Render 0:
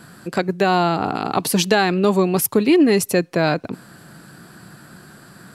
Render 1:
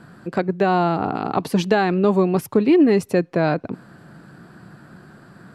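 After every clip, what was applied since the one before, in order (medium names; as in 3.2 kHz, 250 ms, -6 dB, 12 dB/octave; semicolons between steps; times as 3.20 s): low-pass 1.4 kHz 6 dB/octave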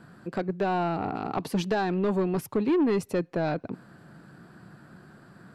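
saturation -12.5 dBFS, distortion -14 dB; trim -6 dB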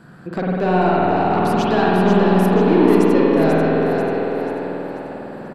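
on a send: frequency-shifting echo 489 ms, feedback 48%, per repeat +53 Hz, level -6 dB; on the sum: spring tank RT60 3.9 s, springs 49 ms, chirp 55 ms, DRR -5.5 dB; trim +4.5 dB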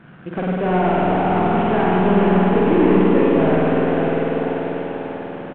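CVSD coder 16 kbps; delay 600 ms -8.5 dB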